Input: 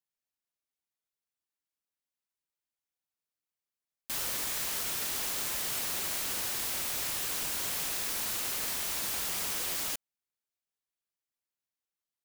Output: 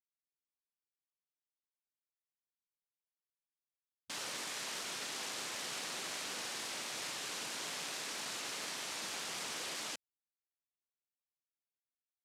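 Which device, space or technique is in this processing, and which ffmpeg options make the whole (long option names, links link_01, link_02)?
over-cleaned archive recording: -af "highpass=180,lowpass=7300,afwtdn=0.00447,volume=-3dB"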